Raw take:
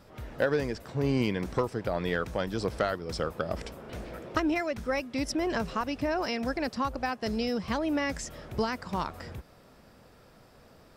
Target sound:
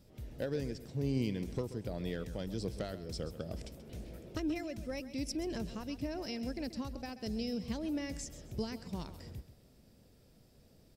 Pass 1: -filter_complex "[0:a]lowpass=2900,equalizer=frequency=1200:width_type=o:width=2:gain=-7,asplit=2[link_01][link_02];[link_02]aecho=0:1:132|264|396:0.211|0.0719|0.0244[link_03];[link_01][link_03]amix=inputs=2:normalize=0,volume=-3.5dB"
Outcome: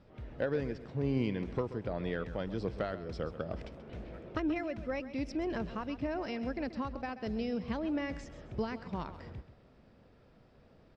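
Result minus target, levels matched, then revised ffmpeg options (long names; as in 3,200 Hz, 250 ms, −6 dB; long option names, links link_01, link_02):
4,000 Hz band −6.5 dB; 1,000 Hz band +5.5 dB
-filter_complex "[0:a]equalizer=frequency=1200:width_type=o:width=2:gain=-17.5,asplit=2[link_01][link_02];[link_02]aecho=0:1:132|264|396:0.211|0.0719|0.0244[link_03];[link_01][link_03]amix=inputs=2:normalize=0,volume=-3.5dB"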